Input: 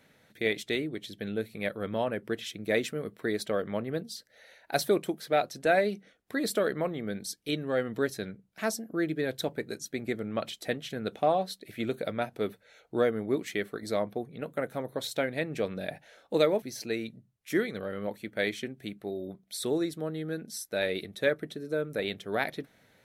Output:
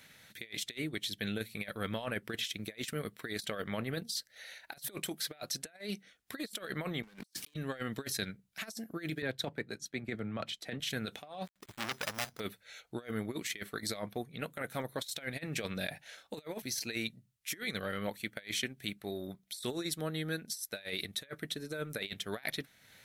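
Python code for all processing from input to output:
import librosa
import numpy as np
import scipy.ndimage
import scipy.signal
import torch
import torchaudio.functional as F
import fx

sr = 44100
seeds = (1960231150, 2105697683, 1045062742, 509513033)

y = fx.chain(x, sr, fx.highpass(hz=170.0, slope=12),
    fx.leveller(passes=5),
    fx.sustainer(db_per_s=73.0), at=(7.03, 7.54))
y = fx.chain(y, sr, fx.lowpass(hz=1500.0, slope=6),
    fx.band_widen(depth_pct=40), at=(9.22, 10.8))
y = fx.chain(y, sr, fx.dead_time(dead_ms=0.26),
    fx.resample_bad(factor=8, down='filtered', up='hold'),
    fx.transformer_sat(knee_hz=2500.0), at=(11.46, 12.4))
y = fx.tone_stack(y, sr, knobs='5-5-5')
y = fx.over_compress(y, sr, threshold_db=-49.0, ratio=-0.5)
y = fx.transient(y, sr, attack_db=-2, sustain_db=-6)
y = y * 10.0 ** (12.0 / 20.0)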